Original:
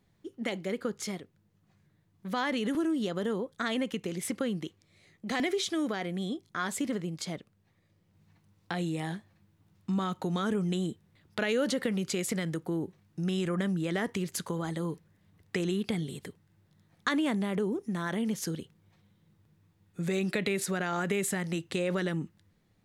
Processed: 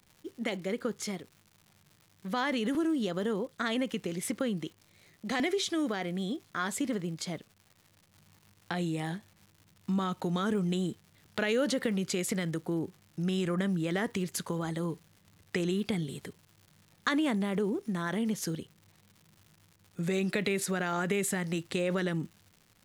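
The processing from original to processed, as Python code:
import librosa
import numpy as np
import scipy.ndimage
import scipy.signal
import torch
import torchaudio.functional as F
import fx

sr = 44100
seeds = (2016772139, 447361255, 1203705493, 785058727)

y = fx.dmg_crackle(x, sr, seeds[0], per_s=260.0, level_db=-47.0)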